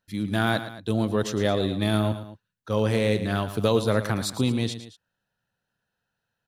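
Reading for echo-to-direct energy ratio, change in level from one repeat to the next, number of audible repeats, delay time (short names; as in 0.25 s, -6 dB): -11.0 dB, -5.5 dB, 2, 0.112 s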